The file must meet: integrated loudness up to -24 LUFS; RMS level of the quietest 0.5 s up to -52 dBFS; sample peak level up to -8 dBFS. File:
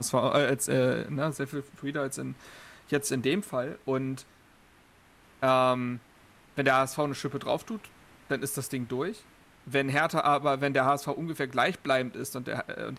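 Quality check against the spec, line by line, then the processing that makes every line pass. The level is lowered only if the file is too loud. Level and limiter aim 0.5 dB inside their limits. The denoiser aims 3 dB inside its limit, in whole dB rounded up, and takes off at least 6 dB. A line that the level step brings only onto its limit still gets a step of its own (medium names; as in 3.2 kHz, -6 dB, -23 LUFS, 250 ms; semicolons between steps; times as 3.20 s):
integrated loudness -29.0 LUFS: pass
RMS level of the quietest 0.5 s -59 dBFS: pass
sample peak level -12.5 dBFS: pass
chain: none needed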